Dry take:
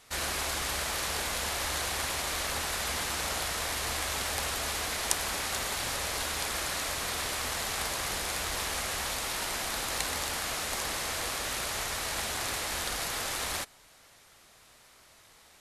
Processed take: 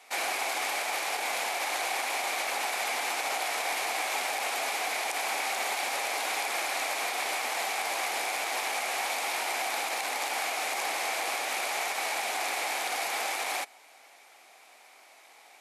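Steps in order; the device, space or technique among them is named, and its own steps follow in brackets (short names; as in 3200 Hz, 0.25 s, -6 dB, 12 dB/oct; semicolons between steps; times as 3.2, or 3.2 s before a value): laptop speaker (HPF 280 Hz 24 dB/oct; bell 770 Hz +12 dB 0.53 oct; bell 2300 Hz +10.5 dB 0.36 oct; limiter -20 dBFS, peak gain reduction 13.5 dB); gain -1 dB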